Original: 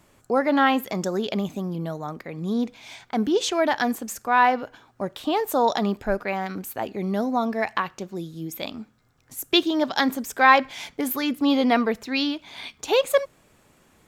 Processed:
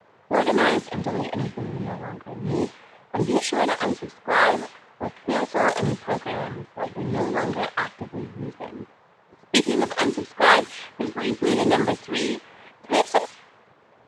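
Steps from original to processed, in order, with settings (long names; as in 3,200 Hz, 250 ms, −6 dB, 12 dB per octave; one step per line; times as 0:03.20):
noise in a band 510–6,300 Hz −45 dBFS
cochlear-implant simulation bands 6
low-pass that shuts in the quiet parts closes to 700 Hz, open at −17.5 dBFS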